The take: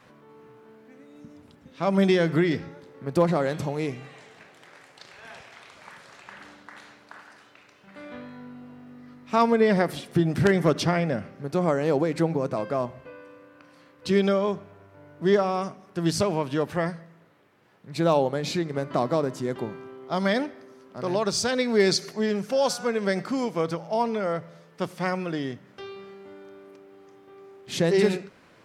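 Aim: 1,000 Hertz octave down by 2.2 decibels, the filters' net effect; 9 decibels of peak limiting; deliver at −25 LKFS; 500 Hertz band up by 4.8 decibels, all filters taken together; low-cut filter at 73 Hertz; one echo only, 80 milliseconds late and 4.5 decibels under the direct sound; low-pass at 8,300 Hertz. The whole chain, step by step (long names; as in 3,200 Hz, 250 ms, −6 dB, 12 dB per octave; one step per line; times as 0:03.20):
high-pass filter 73 Hz
low-pass filter 8,300 Hz
parametric band 500 Hz +7.5 dB
parametric band 1,000 Hz −6.5 dB
brickwall limiter −14.5 dBFS
single-tap delay 80 ms −4.5 dB
level −1 dB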